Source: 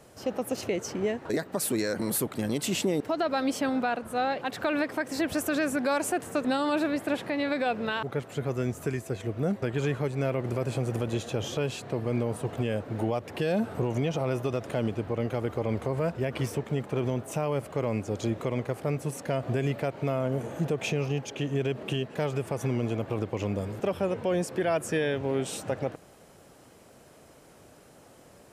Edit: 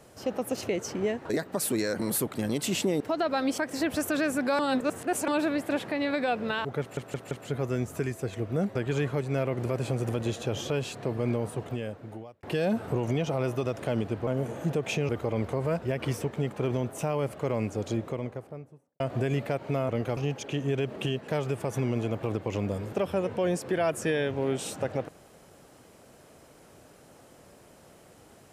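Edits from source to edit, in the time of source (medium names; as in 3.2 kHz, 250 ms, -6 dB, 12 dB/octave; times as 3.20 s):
3.58–4.96 s: delete
5.97–6.66 s: reverse
8.18 s: stutter 0.17 s, 4 plays
12.22–13.30 s: fade out
15.14–15.42 s: swap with 20.22–21.04 s
18.01–19.33 s: studio fade out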